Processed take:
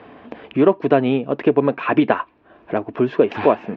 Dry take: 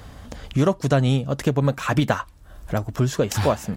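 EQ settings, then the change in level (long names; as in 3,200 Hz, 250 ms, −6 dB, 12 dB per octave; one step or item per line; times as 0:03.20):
high-frequency loss of the air 84 metres
loudspeaker in its box 210–3,300 Hz, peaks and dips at 240 Hz +5 dB, 430 Hz +8 dB, 690 Hz +7 dB, 1,000 Hz +7 dB, 1,700 Hz +4 dB, 2,500 Hz +9 dB
parametric band 330 Hz +9.5 dB 0.57 octaves
−1.5 dB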